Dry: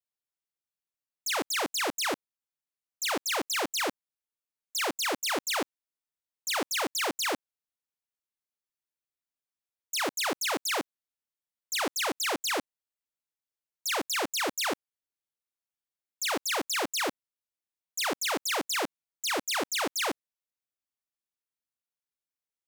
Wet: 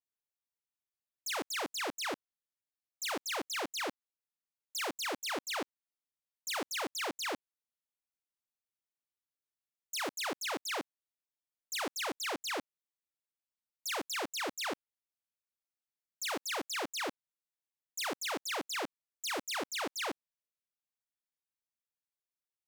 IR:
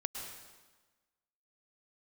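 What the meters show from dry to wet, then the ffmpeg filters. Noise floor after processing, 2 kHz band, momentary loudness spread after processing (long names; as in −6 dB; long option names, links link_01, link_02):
below −85 dBFS, −6.5 dB, 6 LU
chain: -af "adynamicequalizer=threshold=0.00562:dfrequency=6400:dqfactor=0.7:tfrequency=6400:tqfactor=0.7:attack=5:release=100:ratio=0.375:range=3:mode=cutabove:tftype=highshelf,volume=-6.5dB"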